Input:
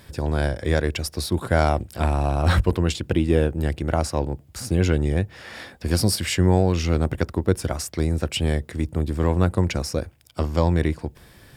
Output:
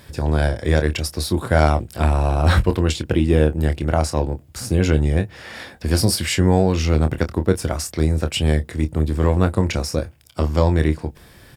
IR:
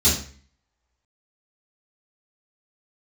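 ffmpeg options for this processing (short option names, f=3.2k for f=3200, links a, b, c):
-filter_complex "[0:a]asplit=2[a][b];[b]adelay=26,volume=-9dB[c];[a][c]amix=inputs=2:normalize=0,volume=2.5dB"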